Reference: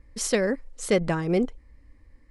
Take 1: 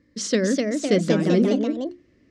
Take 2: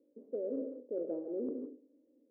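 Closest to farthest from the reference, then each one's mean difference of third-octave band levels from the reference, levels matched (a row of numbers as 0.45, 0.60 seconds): 1, 2; 7.0, 14.5 decibels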